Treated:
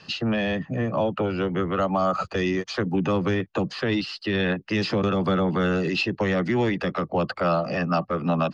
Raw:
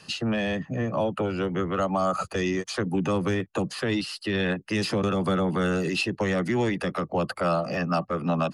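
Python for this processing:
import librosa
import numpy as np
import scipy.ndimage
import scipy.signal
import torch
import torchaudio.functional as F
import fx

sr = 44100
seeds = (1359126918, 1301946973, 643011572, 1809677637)

y = scipy.signal.sosfilt(scipy.signal.butter(4, 5300.0, 'lowpass', fs=sr, output='sos'), x)
y = y * librosa.db_to_amplitude(2.0)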